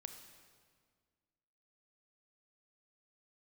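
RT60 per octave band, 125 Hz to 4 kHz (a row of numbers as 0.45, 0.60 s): 2.1, 2.2, 1.9, 1.7, 1.6, 1.5 s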